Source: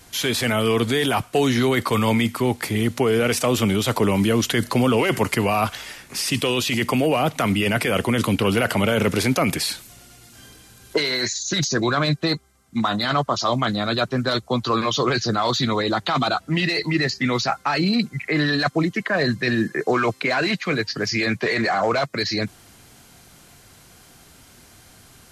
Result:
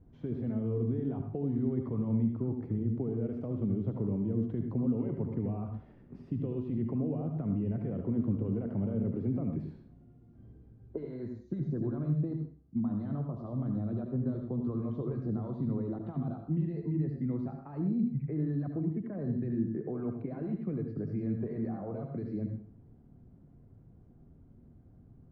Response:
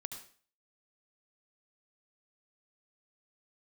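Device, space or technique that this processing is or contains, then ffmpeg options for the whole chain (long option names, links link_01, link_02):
television next door: -filter_complex "[0:a]acompressor=threshold=-23dB:ratio=4,lowpass=280[link_01];[1:a]atrim=start_sample=2205[link_02];[link_01][link_02]afir=irnorm=-1:irlink=0"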